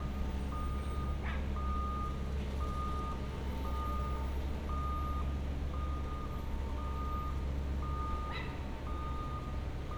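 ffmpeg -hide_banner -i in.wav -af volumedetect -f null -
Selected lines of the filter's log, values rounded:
mean_volume: -36.3 dB
max_volume: -24.2 dB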